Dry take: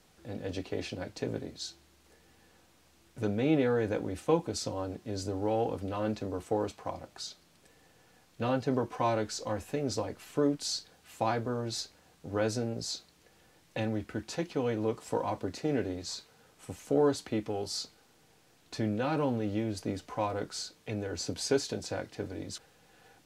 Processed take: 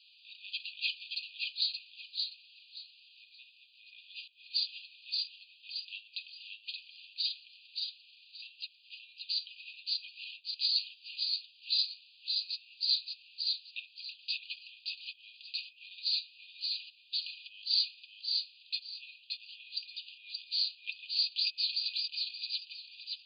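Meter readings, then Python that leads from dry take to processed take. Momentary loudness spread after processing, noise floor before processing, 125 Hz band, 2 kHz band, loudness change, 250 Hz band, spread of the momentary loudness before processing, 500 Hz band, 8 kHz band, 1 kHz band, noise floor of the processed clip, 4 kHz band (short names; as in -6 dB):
18 LU, -64 dBFS, under -40 dB, -1.5 dB, -1.5 dB, under -40 dB, 12 LU, under -40 dB, under -40 dB, under -40 dB, -62 dBFS, +10.5 dB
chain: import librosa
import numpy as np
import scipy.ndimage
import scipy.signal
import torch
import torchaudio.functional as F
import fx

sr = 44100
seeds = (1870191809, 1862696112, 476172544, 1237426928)

p1 = fx.over_compress(x, sr, threshold_db=-35.0, ratio=-0.5)
p2 = fx.brickwall_bandpass(p1, sr, low_hz=2400.0, high_hz=4900.0)
p3 = p2 + fx.echo_feedback(p2, sr, ms=575, feedback_pct=24, wet_db=-3.5, dry=0)
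y = p3 * librosa.db_to_amplitude(7.0)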